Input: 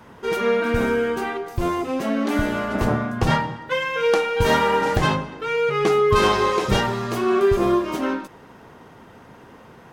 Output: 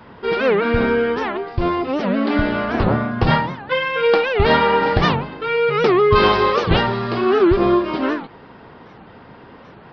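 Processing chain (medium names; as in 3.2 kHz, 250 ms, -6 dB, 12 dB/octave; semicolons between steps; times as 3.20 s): resampled via 11.025 kHz; warped record 78 rpm, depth 250 cents; trim +3.5 dB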